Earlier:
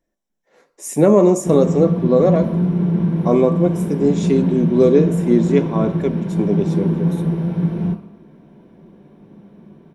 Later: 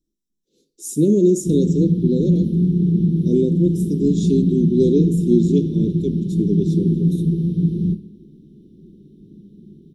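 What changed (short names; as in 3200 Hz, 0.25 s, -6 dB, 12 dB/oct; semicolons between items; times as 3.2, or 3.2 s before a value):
background: add low shelf 93 Hz +7 dB; master: add elliptic band-stop 370–3600 Hz, stop band 40 dB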